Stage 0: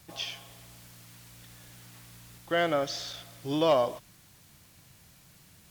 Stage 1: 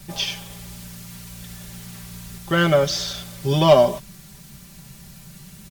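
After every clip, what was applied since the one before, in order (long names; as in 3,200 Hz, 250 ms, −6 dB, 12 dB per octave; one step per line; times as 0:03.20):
bass and treble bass +10 dB, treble +3 dB
comb filter 5.1 ms, depth 96%
level +6.5 dB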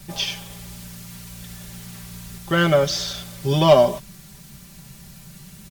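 no processing that can be heard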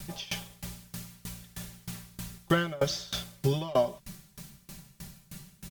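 downward compressor 3 to 1, threshold −21 dBFS, peak gain reduction 10 dB
tremolo with a ramp in dB decaying 3.2 Hz, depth 25 dB
level +2.5 dB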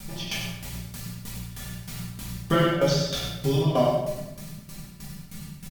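single-tap delay 96 ms −7.5 dB
rectangular room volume 360 cubic metres, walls mixed, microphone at 1.8 metres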